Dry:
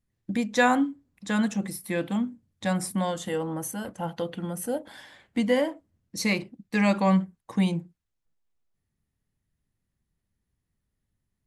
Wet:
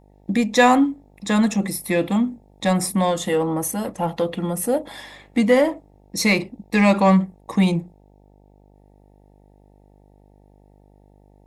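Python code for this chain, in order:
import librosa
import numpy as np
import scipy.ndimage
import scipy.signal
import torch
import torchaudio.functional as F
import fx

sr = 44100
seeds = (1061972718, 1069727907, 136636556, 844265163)

p1 = fx.notch_comb(x, sr, f0_hz=1500.0)
p2 = fx.dmg_buzz(p1, sr, base_hz=50.0, harmonics=18, level_db=-63.0, tilt_db=-4, odd_only=False)
p3 = 10.0 ** (-27.5 / 20.0) * np.tanh(p2 / 10.0 ** (-27.5 / 20.0))
p4 = p2 + (p3 * 10.0 ** (-4.0 / 20.0))
y = p4 * 10.0 ** (6.0 / 20.0)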